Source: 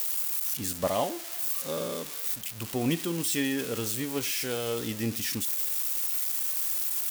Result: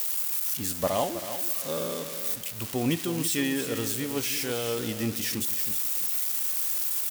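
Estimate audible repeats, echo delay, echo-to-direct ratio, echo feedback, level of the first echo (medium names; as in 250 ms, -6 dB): 3, 321 ms, -10.0 dB, no regular repeats, -10.5 dB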